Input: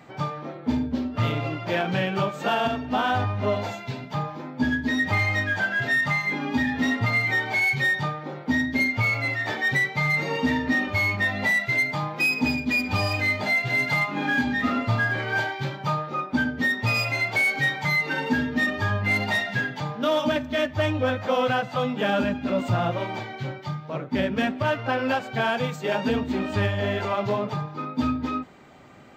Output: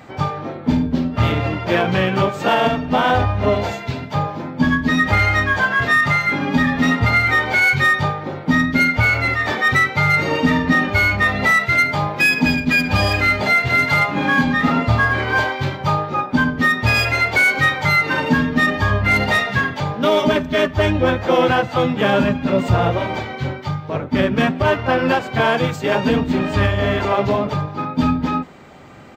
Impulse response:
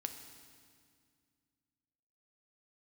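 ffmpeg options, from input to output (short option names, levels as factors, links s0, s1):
-filter_complex "[0:a]acontrast=76,asplit=2[s0][s1];[s1]asetrate=29433,aresample=44100,atempo=1.49831,volume=0.501[s2];[s0][s2]amix=inputs=2:normalize=0"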